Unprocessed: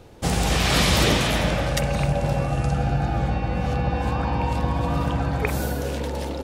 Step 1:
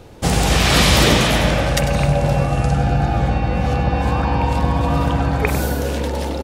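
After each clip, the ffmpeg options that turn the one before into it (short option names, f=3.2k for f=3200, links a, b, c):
-af "aecho=1:1:98:0.266,volume=5.5dB"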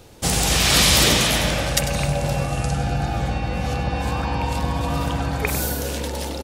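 -af "highshelf=f=3.3k:g=11.5,volume=-6dB"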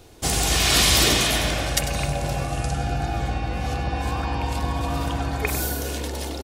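-af "aecho=1:1:2.8:0.36,volume=-2.5dB"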